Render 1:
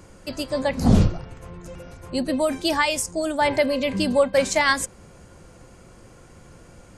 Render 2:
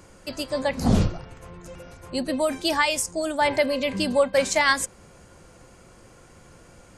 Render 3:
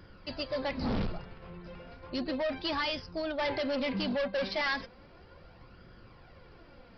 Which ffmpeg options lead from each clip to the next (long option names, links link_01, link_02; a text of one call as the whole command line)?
ffmpeg -i in.wav -af "lowshelf=frequency=410:gain=-4.5" out.wav
ffmpeg -i in.wav -af "flanger=delay=0.6:depth=4.7:regen=40:speed=0.34:shape=sinusoidal,aresample=11025,asoftclip=type=hard:threshold=-28.5dB,aresample=44100" out.wav